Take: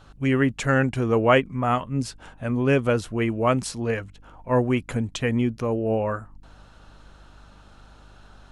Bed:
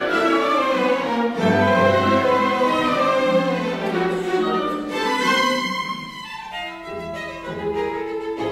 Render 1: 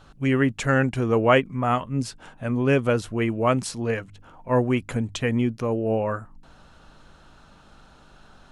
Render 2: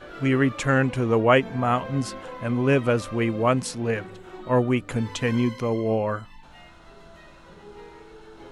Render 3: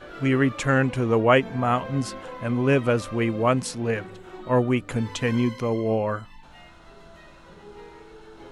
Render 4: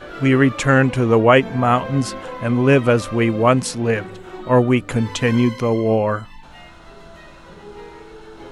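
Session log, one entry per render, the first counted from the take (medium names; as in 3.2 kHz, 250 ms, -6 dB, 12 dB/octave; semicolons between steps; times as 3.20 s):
de-hum 50 Hz, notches 2
add bed -21 dB
no audible change
trim +6.5 dB; peak limiter -1 dBFS, peak gain reduction 2.5 dB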